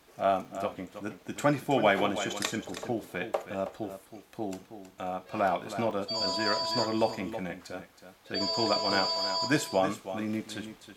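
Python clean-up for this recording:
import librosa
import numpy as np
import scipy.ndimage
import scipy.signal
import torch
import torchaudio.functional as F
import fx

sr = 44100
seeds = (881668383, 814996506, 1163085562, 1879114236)

y = fx.fix_interpolate(x, sr, at_s=(0.45, 5.91), length_ms=2.1)
y = fx.fix_echo_inverse(y, sr, delay_ms=321, level_db=-11.0)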